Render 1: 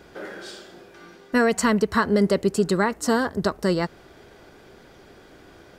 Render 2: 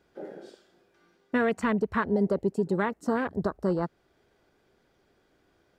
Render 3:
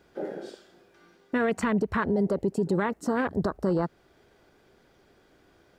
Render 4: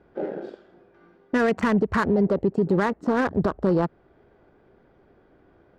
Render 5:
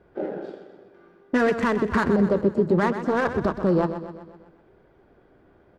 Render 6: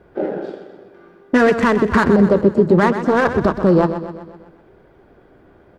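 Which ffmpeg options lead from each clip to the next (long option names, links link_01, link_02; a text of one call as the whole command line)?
ffmpeg -i in.wav -af "alimiter=limit=-14dB:level=0:latency=1:release=464,afwtdn=0.0316,volume=-2dB" out.wav
ffmpeg -i in.wav -af "alimiter=limit=-24dB:level=0:latency=1:release=55,volume=6.5dB" out.wav
ffmpeg -i in.wav -af "adynamicsmooth=sensitivity=5.5:basefreq=1600,volume=4.5dB" out.wav
ffmpeg -i in.wav -filter_complex "[0:a]flanger=delay=1.8:depth=8.5:regen=-62:speed=0.62:shape=sinusoidal,asplit=2[link_01][link_02];[link_02]aecho=0:1:126|252|378|504|630|756:0.299|0.161|0.0871|0.047|0.0254|0.0137[link_03];[link_01][link_03]amix=inputs=2:normalize=0,volume=4.5dB" out.wav
ffmpeg -i in.wav -af "volume=7.5dB" -ar 44100 -c:a ac3 -b:a 96k out.ac3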